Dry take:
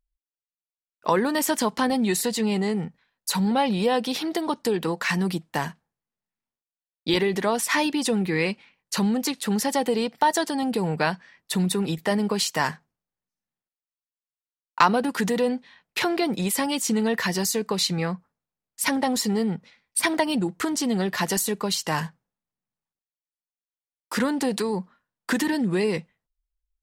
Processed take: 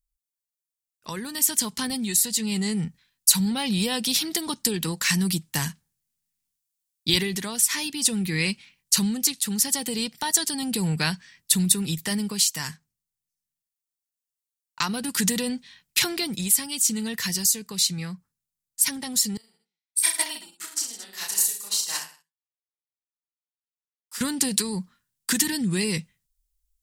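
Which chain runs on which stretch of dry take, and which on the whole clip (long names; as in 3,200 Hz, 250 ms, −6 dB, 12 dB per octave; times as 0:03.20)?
0:19.37–0:24.21: Chebyshev high-pass filter 640 Hz + reverse bouncing-ball delay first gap 30 ms, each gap 1.2×, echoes 5, each echo −2 dB + expander for the loud parts 2.5 to 1, over −43 dBFS
whole clip: drawn EQ curve 130 Hz 0 dB, 610 Hz −18 dB, 8,100 Hz +9 dB; speech leveller within 4 dB 0.5 s; level +2 dB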